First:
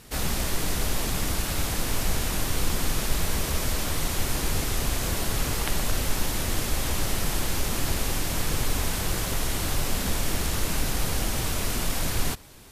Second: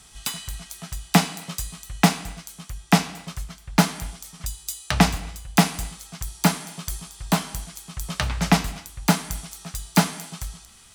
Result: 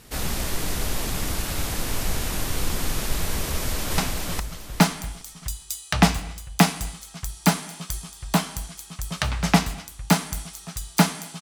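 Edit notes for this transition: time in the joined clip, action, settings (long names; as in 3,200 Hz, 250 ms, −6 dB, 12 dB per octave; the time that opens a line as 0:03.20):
first
0:03.49–0:03.98: delay throw 410 ms, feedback 30%, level −2 dB
0:03.98: continue with second from 0:02.96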